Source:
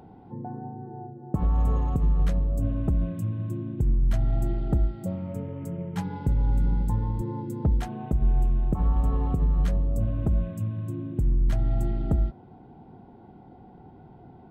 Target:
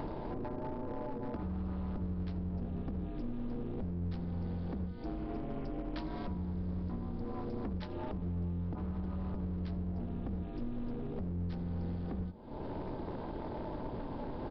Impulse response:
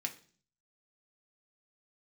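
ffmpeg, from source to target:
-filter_complex "[0:a]acompressor=mode=upward:threshold=-29dB:ratio=2.5,asplit=2[link_01][link_02];[link_02]aecho=0:1:82:0.075[link_03];[link_01][link_03]amix=inputs=2:normalize=0,aeval=exprs='val(0)*sin(2*PI*130*n/s)':channel_layout=same,bass=frequency=250:gain=-1,treble=frequency=4000:gain=15,acompressor=threshold=-36dB:ratio=10,bandreject=frequency=51.08:width_type=h:width=4,bandreject=frequency=102.16:width_type=h:width=4,bandreject=frequency=153.24:width_type=h:width=4,bandreject=frequency=204.32:width_type=h:width=4,bandreject=frequency=255.4:width_type=h:width=4,bandreject=frequency=306.48:width_type=h:width=4,bandreject=frequency=357.56:width_type=h:width=4,bandreject=frequency=408.64:width_type=h:width=4,bandreject=frequency=459.72:width_type=h:width=4,bandreject=frequency=510.8:width_type=h:width=4,bandreject=frequency=561.88:width_type=h:width=4,bandreject=frequency=612.96:width_type=h:width=4,bandreject=frequency=664.04:width_type=h:width=4,bandreject=frequency=715.12:width_type=h:width=4,bandreject=frequency=766.2:width_type=h:width=4,bandreject=frequency=817.28:width_type=h:width=4,bandreject=frequency=868.36:width_type=h:width=4,bandreject=frequency=919.44:width_type=h:width=4,bandreject=frequency=970.52:width_type=h:width=4,bandreject=frequency=1021.6:width_type=h:width=4,bandreject=frequency=1072.68:width_type=h:width=4,bandreject=frequency=1123.76:width_type=h:width=4,bandreject=frequency=1174.84:width_type=h:width=4,bandreject=frequency=1225.92:width_type=h:width=4,bandreject=frequency=1277:width_type=h:width=4,bandreject=frequency=1328.08:width_type=h:width=4,bandreject=frequency=1379.16:width_type=h:width=4,bandreject=frequency=1430.24:width_type=h:width=4,bandreject=frequency=1481.32:width_type=h:width=4,aresample=11025,asoftclip=type=hard:threshold=-38dB,aresample=44100,asplit=2[link_04][link_05];[link_05]asetrate=22050,aresample=44100,atempo=2,volume=-9dB[link_06];[link_04][link_06]amix=inputs=2:normalize=0,volume=4dB"

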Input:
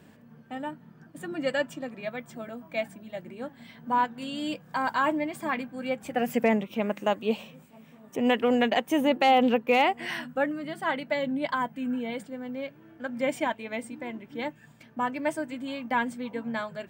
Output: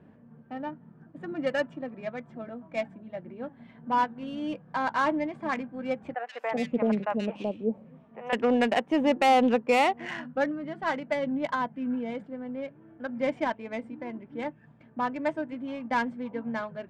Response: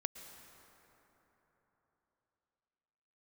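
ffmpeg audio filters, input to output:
-filter_complex "[0:a]adynamicsmooth=sensitivity=2:basefreq=1500,asettb=1/sr,asplit=3[link_01][link_02][link_03];[link_01]atrim=end=6.144[link_04];[link_02]atrim=start=6.14:end=8.33,asetpts=PTS-STARTPTS,afade=type=in:duration=0.004:curve=qsin,afade=type=out:start_time=2.186:duration=0.004:curve=qsin,acrossover=split=620|2200[link_05][link_06][link_07];[link_07]adelay=130[link_08];[link_05]adelay=380[link_09];[link_09][link_06][link_08]amix=inputs=3:normalize=0,atrim=end_sample=96579[link_10];[link_03]atrim=start=8.326[link_11];[link_04][link_10]acrossfade=duration=0.004:curve1=hsin:curve2=qsin[link_12];[link_12][link_11]acrossfade=duration=0.004:curve1=qsin:curve2=hsin"

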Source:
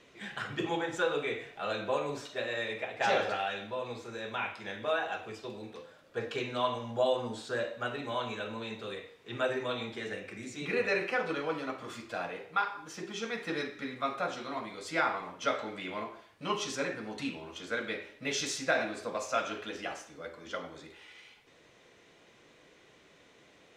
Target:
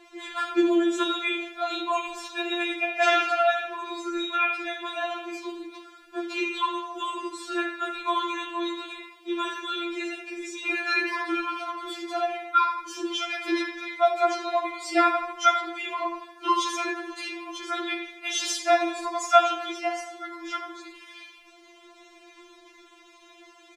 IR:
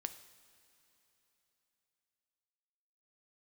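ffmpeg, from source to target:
-filter_complex "[0:a]asplit=2[link_01][link_02];[link_02]adelay=79,lowpass=frequency=3700:poles=1,volume=-9dB,asplit=2[link_03][link_04];[link_04]adelay=79,lowpass=frequency=3700:poles=1,volume=0.54,asplit=2[link_05][link_06];[link_06]adelay=79,lowpass=frequency=3700:poles=1,volume=0.54,asplit=2[link_07][link_08];[link_08]adelay=79,lowpass=frequency=3700:poles=1,volume=0.54,asplit=2[link_09][link_10];[link_10]adelay=79,lowpass=frequency=3700:poles=1,volume=0.54,asplit=2[link_11][link_12];[link_12]adelay=79,lowpass=frequency=3700:poles=1,volume=0.54[link_13];[link_01][link_03][link_05][link_07][link_09][link_11][link_13]amix=inputs=7:normalize=0,asplit=2[link_14][link_15];[1:a]atrim=start_sample=2205[link_16];[link_15][link_16]afir=irnorm=-1:irlink=0,volume=-2dB[link_17];[link_14][link_17]amix=inputs=2:normalize=0,afftfilt=real='re*4*eq(mod(b,16),0)':imag='im*4*eq(mod(b,16),0)':win_size=2048:overlap=0.75,volume=5.5dB"

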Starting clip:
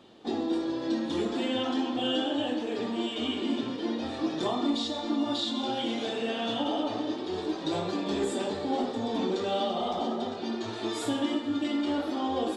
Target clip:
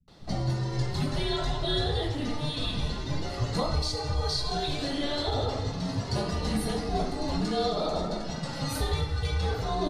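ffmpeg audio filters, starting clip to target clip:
ffmpeg -i in.wav -filter_complex "[0:a]acrossover=split=190[link_01][link_02];[link_02]adelay=100[link_03];[link_01][link_03]amix=inputs=2:normalize=0,asetrate=56007,aresample=44100,afreqshift=-290,volume=2dB" out.wav

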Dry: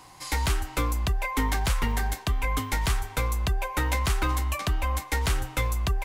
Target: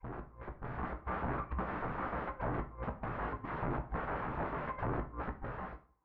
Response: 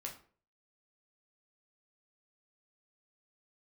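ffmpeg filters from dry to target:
-filter_complex "[0:a]areverse,asuperstop=centerf=650:order=12:qfactor=3.1,asplit=2[link_01][link_02];[link_02]asoftclip=type=hard:threshold=-25.5dB,volume=-4dB[link_03];[link_01][link_03]amix=inputs=2:normalize=0,bandreject=frequency=60:width_type=h:width=6,bandreject=frequency=120:width_type=h:width=6,bandreject=frequency=180:width_type=h:width=6,bandreject=frequency=240:width_type=h:width=6,bandreject=frequency=300:width_type=h:width=6,bandreject=frequency=360:width_type=h:width=6,bandreject=frequency=420:width_type=h:width=6,bandreject=frequency=480:width_type=h:width=6,bandreject=frequency=540:width_type=h:width=6,agate=range=-29dB:threshold=-23dB:ratio=16:detection=peak,acompressor=threshold=-26dB:ratio=10,aeval=exprs='(mod(39.8*val(0)+1,2)-1)/39.8':channel_layout=same,asplit=2[link_04][link_05];[1:a]atrim=start_sample=2205,adelay=17[link_06];[link_05][link_06]afir=irnorm=-1:irlink=0,volume=-3.5dB[link_07];[link_04][link_07]amix=inputs=2:normalize=0,dynaudnorm=framelen=130:gausssize=11:maxgain=8dB,lowpass=frequency=1500:width=0.5412,lowpass=frequency=1500:width=1.3066,volume=-5.5dB"

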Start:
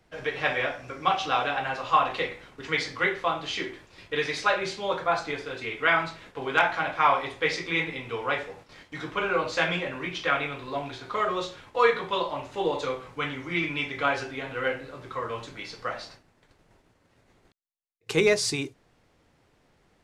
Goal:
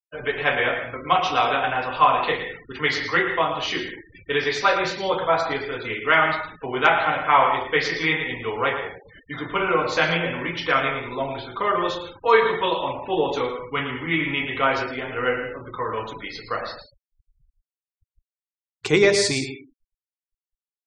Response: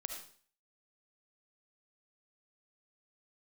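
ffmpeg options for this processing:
-filter_complex "[0:a]asetrate=42336,aresample=44100,asplit=2[link_01][link_02];[1:a]atrim=start_sample=2205,asetrate=61740,aresample=44100,adelay=112[link_03];[link_02][link_03]afir=irnorm=-1:irlink=0,volume=-2.5dB[link_04];[link_01][link_04]amix=inputs=2:normalize=0,afftfilt=real='re*gte(hypot(re,im),0.00891)':imag='im*gte(hypot(re,im),0.00891)':win_size=1024:overlap=0.75,volume=4.5dB"

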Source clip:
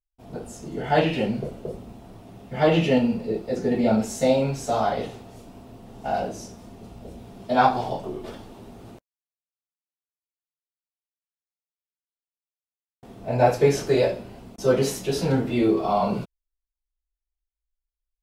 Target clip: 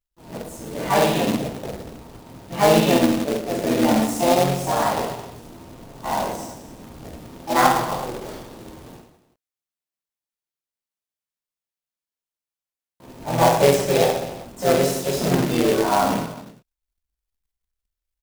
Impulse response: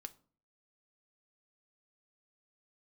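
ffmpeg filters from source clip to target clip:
-filter_complex "[0:a]asplit=2[link_01][link_02];[link_02]asetrate=58866,aresample=44100,atempo=0.749154,volume=-1dB[link_03];[link_01][link_03]amix=inputs=2:normalize=0,aecho=1:1:50|110|182|268.4|372.1:0.631|0.398|0.251|0.158|0.1,acrusher=bits=2:mode=log:mix=0:aa=0.000001,volume=-2.5dB"

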